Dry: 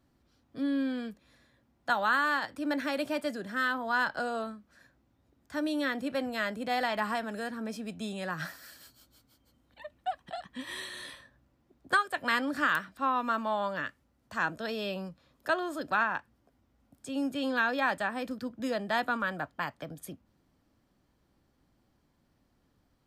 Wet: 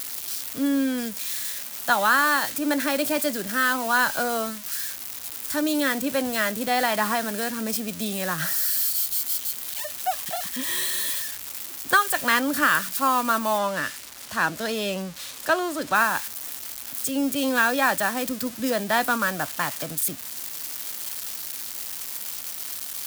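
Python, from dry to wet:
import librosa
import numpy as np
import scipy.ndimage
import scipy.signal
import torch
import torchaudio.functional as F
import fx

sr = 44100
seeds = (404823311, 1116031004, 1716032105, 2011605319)

y = x + 0.5 * 10.0 ** (-28.5 / 20.0) * np.diff(np.sign(x), prepend=np.sign(x[:1]))
y = fx.high_shelf(y, sr, hz=9700.0, db=fx.steps((0.0, 3.5), (13.57, -9.5), (15.94, 2.5)))
y = F.gain(torch.from_numpy(y), 7.0).numpy()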